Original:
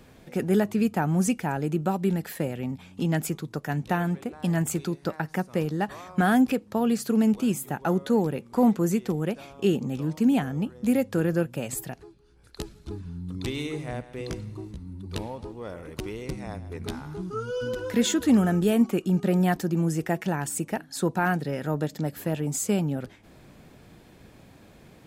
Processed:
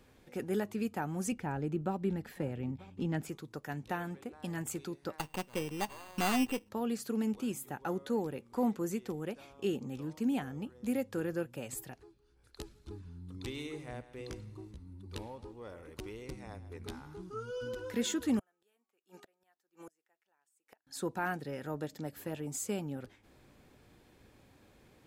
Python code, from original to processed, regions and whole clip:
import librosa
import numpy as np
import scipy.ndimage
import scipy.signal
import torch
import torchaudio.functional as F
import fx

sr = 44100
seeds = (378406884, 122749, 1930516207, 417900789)

y = fx.chain(x, sr, fx.lowpass(hz=3400.0, slope=6),
    fx.low_shelf(hz=210.0, db=9.0),
    fx.echo_single(ms=938, db=-21.0), at=(1.32, 3.29))
y = fx.chain(y, sr, fx.sample_sort(block=16),
    fx.peak_eq(hz=970.0, db=7.5, octaves=0.6),
    fx.resample_bad(factor=8, down='none', up='hold'), at=(5.18, 6.69))
y = fx.chain(y, sr, fx.highpass(hz=640.0, slope=12),
    fx.gate_flip(shuts_db=-29.0, range_db=-35), at=(18.39, 20.87))
y = fx.peak_eq(y, sr, hz=170.0, db=-6.5, octaves=0.63)
y = fx.notch(y, sr, hz=660.0, q=12.0)
y = y * librosa.db_to_amplitude(-9.0)